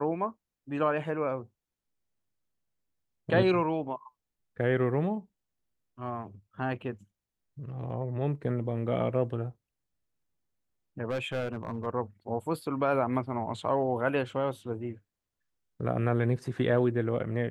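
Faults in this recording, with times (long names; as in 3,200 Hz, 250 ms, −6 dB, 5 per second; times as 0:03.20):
0:11.10–0:11.87: clipping −28 dBFS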